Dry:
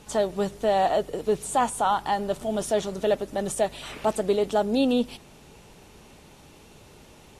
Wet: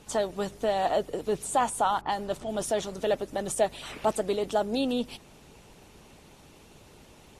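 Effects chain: 2.01–2.59 s: level-controlled noise filter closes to 1.1 kHz, open at -22.5 dBFS; harmonic-percussive split harmonic -6 dB

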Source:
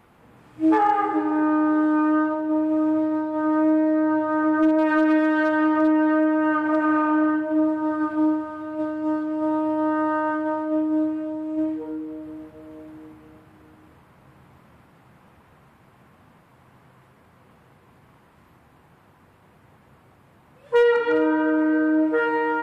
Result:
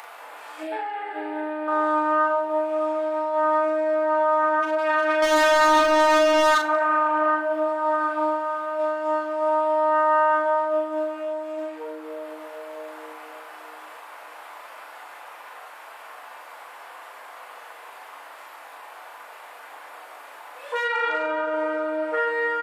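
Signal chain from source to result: high-pass 620 Hz 24 dB/octave; in parallel at 0 dB: upward compressor, threshold -30 dBFS; on the sum: peak limiter -15.5 dBFS, peak gain reduction 10 dB; 0.63–1.68 s: static phaser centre 2.7 kHz, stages 4; 5.22–6.58 s: waveshaping leveller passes 3; doubling 39 ms -4 dB; FDN reverb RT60 0.57 s, low-frequency decay 1.5×, high-frequency decay 0.85×, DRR 8 dB; trim -1.5 dB

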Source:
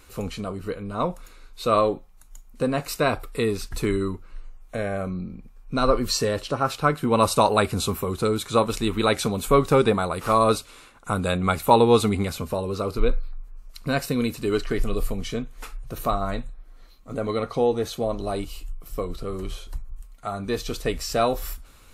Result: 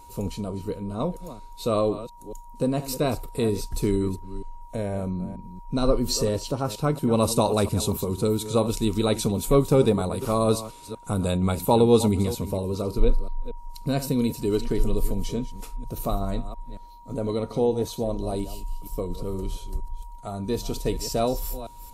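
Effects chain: chunks repeated in reverse 233 ms, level -13 dB; whistle 950 Hz -39 dBFS; peaking EQ 1.6 kHz -14.5 dB 2 oct; trim +2 dB

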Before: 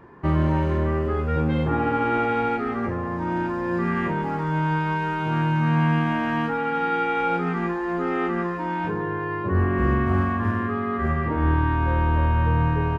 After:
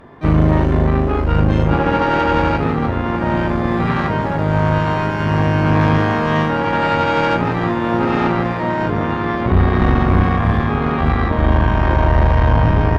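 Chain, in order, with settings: dynamic bell 100 Hz, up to +4 dB, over -33 dBFS, Q 1.9; on a send: echo that smears into a reverb 1032 ms, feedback 63%, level -11 dB; on the sum: harmony voices -7 st -1 dB, +12 st -13 dB; valve stage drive 15 dB, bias 0.7; trim +8 dB

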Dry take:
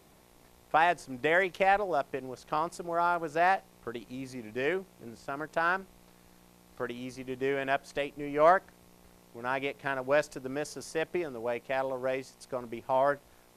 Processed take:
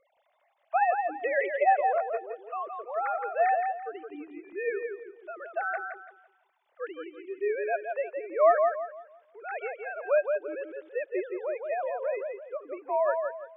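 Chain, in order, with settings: formants replaced by sine waves; on a send: filtered feedback delay 168 ms, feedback 32%, low-pass 2.6 kHz, level -4.5 dB

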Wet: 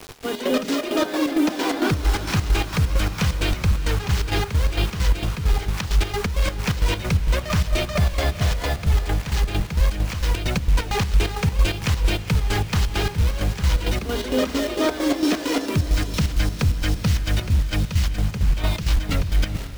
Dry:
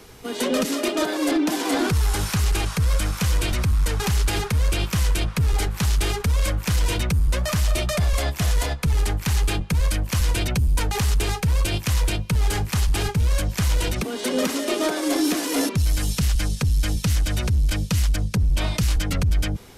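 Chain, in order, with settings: low-pass 5.1 kHz 12 dB/octave; hum notches 60/120/180/240 Hz; in parallel at 0 dB: peak limiter -24.5 dBFS, peak gain reduction 12.5 dB; on the sum: bit crusher 6-bit; square tremolo 4.4 Hz, depth 65%, duty 55%; on a send: echo that smears into a reverb 450 ms, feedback 48%, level -13 dB

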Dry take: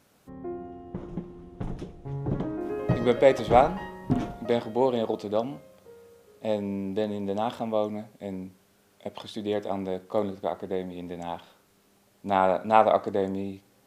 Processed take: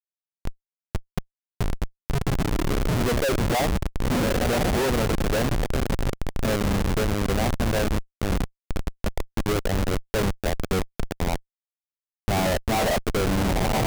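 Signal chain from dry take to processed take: companding laws mixed up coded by A; spectral gate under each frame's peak -15 dB strong; on a send: echo that smears into a reverb 1074 ms, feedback 45%, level -10 dB; on the sum: Schmitt trigger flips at -30 dBFS; trim +7 dB

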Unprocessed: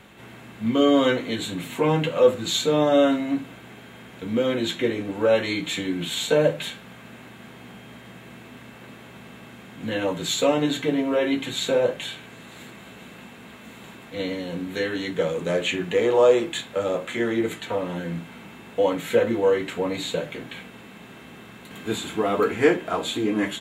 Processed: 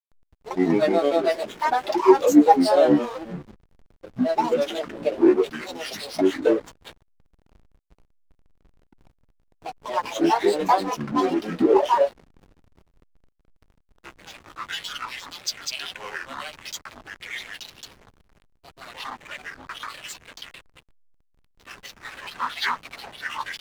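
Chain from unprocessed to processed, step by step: high-pass sweep 470 Hz -> 2 kHz, 12.36–14.93 s; granulator 144 ms, grains 22 per s, spray 252 ms, pitch spread up and down by 12 st; hysteresis with a dead band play -32 dBFS

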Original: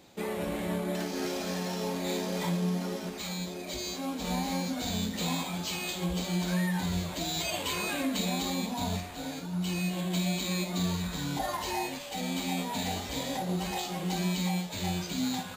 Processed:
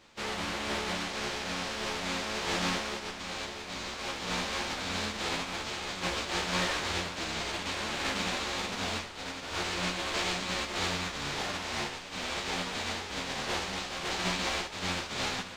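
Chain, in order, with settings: spectral contrast reduction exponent 0.23; distance through air 140 m; three-phase chorus; trim +6 dB

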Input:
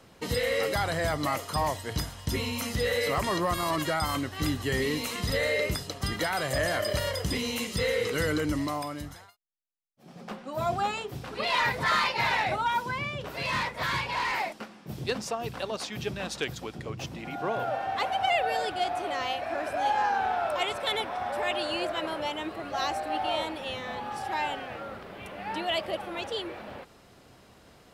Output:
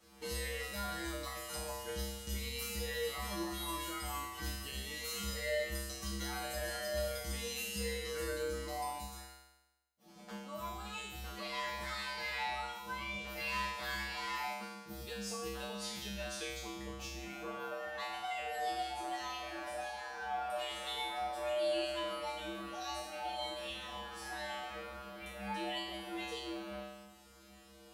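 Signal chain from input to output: treble shelf 4.4 kHz +8.5 dB; compression 4:1, threshold -31 dBFS, peak gain reduction 9.5 dB; feedback comb 67 Hz, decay 1 s, harmonics odd, mix 100%; trim +10 dB

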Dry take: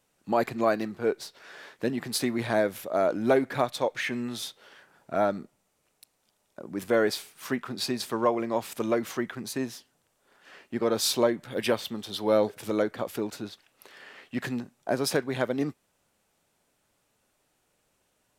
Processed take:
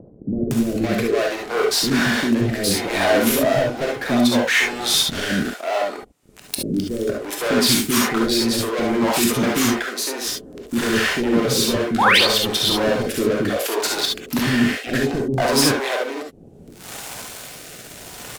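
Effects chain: high-pass 77 Hz 24 dB/octave; in parallel at +3 dB: upward compressor, threshold -26 dBFS; on the sum: waveshaping leveller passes 5; reverse; compression 5:1, threshold -16 dBFS, peak gain reduction 10 dB; reverse; rotary cabinet horn 0.65 Hz; painted sound rise, 11.47–11.70 s, 700–5000 Hz -15 dBFS; bands offset in time lows, highs 510 ms, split 420 Hz; gated-style reverb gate 90 ms rising, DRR 0 dB; trim -1.5 dB

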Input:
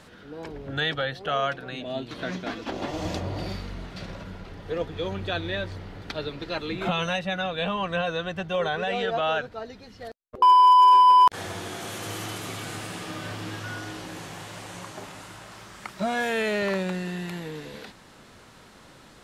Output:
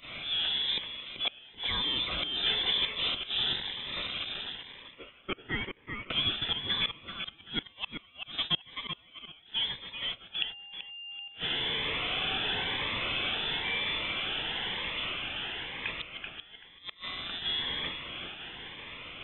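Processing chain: jump at every zero crossing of -27.5 dBFS; high-pass 200 Hz 12 dB/octave, from 4.55 s 1.2 kHz, from 6.10 s 340 Hz; gate -32 dBFS, range -21 dB; dynamic bell 400 Hz, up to +3 dB, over -45 dBFS, Q 3.5; inverted gate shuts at -17 dBFS, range -32 dB; thinning echo 384 ms, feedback 23%, high-pass 410 Hz, level -6 dB; frequency inversion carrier 3.8 kHz; Shepard-style phaser rising 1 Hz

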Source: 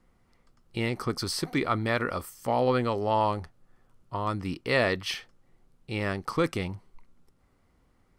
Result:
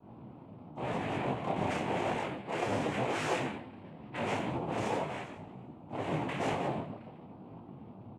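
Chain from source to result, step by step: comb filter that takes the minimum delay 3.2 ms; low-pass 1.3 kHz 24 dB/octave; comb 2.9 ms, depth 98%; in parallel at 0 dB: compression, threshold -35 dBFS, peak gain reduction 15.5 dB; on the sum: two-slope reverb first 0.45 s, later 2.3 s, from -27 dB, DRR -10 dB; hum 60 Hz, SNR 17 dB; saturation -20 dBFS, distortion -5 dB; on a send: reverse bouncing-ball echo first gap 30 ms, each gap 1.1×, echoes 5; on the sum: noise-vocoded speech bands 4; detune thickener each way 32 cents; trim -8.5 dB

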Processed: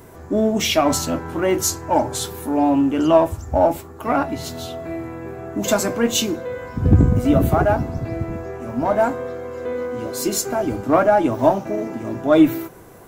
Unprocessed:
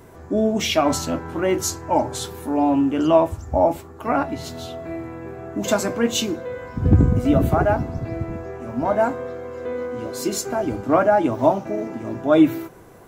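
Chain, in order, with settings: treble shelf 9.3 kHz +7.5 dB; in parallel at -11 dB: one-sided clip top -26 dBFS

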